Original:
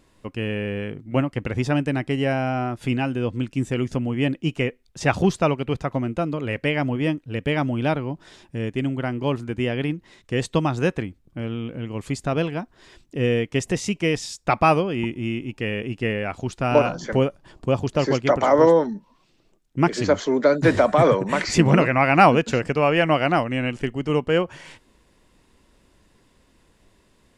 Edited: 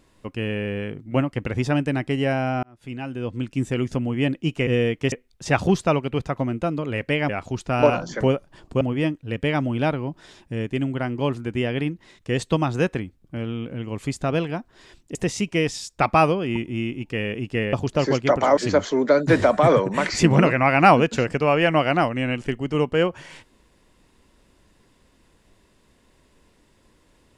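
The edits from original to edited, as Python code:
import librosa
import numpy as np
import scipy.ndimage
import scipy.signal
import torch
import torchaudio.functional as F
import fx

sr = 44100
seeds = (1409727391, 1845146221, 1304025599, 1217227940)

y = fx.edit(x, sr, fx.fade_in_span(start_s=2.63, length_s=0.97),
    fx.move(start_s=13.18, length_s=0.45, to_s=4.67),
    fx.move(start_s=16.21, length_s=1.52, to_s=6.84),
    fx.cut(start_s=18.57, length_s=1.35), tone=tone)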